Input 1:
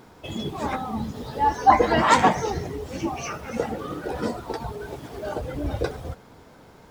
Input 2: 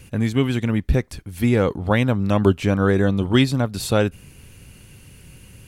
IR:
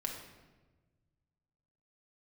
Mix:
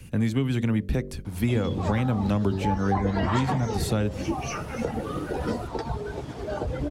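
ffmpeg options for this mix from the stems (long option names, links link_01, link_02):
-filter_complex "[0:a]lowpass=8500,adelay=1250,volume=0dB[link_01];[1:a]equalizer=frequency=200:width=1.5:gain=5,bandreject=frequency=48.1:width_type=h:width=4,bandreject=frequency=96.2:width_type=h:width=4,bandreject=frequency=144.3:width_type=h:width=4,bandreject=frequency=192.4:width_type=h:width=4,bandreject=frequency=240.5:width_type=h:width=4,bandreject=frequency=288.6:width_type=h:width=4,bandreject=frequency=336.7:width_type=h:width=4,bandreject=frequency=384.8:width_type=h:width=4,bandreject=frequency=432.9:width_type=h:width=4,bandreject=frequency=481:width_type=h:width=4,bandreject=frequency=529.1:width_type=h:width=4,bandreject=frequency=577.2:width_type=h:width=4,bandreject=frequency=625.3:width_type=h:width=4,volume=-3.5dB[link_02];[link_01][link_02]amix=inputs=2:normalize=0,acrossover=split=120|270[link_03][link_04][link_05];[link_03]acompressor=threshold=-32dB:ratio=4[link_06];[link_04]acompressor=threshold=-35dB:ratio=4[link_07];[link_05]acompressor=threshold=-28dB:ratio=4[link_08];[link_06][link_07][link_08]amix=inputs=3:normalize=0,lowshelf=frequency=200:gain=5.5"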